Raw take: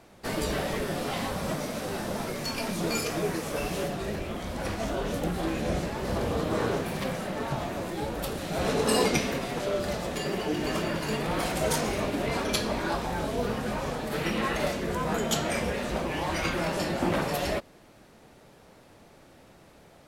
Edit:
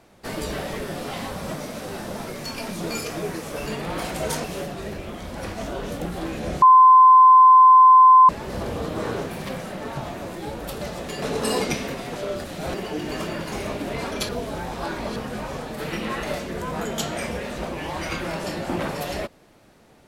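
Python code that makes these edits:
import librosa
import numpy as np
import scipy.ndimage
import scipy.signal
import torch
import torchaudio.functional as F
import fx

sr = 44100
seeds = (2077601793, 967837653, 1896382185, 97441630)

y = fx.edit(x, sr, fx.insert_tone(at_s=5.84, length_s=1.67, hz=1030.0, db=-7.5),
    fx.swap(start_s=8.36, length_s=0.3, other_s=9.88, other_length_s=0.41),
    fx.move(start_s=11.07, length_s=0.78, to_s=3.66),
    fx.reverse_span(start_s=12.62, length_s=0.87), tone=tone)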